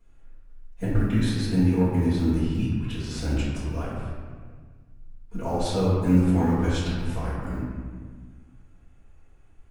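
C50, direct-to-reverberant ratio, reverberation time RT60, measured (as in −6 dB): −1.5 dB, −11.0 dB, 1.6 s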